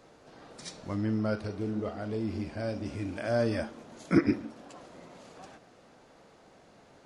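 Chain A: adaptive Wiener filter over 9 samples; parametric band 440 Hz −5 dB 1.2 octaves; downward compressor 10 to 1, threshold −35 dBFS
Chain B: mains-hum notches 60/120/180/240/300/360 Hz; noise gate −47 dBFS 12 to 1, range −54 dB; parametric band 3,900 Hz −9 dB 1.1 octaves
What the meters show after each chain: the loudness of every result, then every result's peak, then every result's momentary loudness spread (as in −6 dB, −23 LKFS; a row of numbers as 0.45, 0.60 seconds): −41.5, −32.5 LKFS; −25.0, −12.0 dBFS; 22, 18 LU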